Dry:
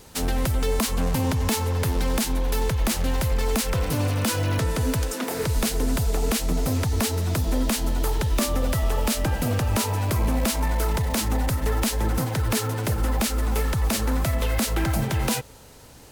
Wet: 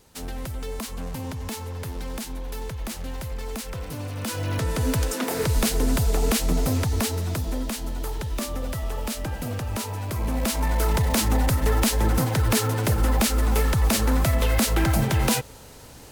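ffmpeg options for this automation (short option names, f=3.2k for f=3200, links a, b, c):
-af "volume=10dB,afade=t=in:st=4.1:d=0.97:silence=0.298538,afade=t=out:st=6.53:d=1.16:silence=0.421697,afade=t=in:st=10.09:d=0.93:silence=0.375837"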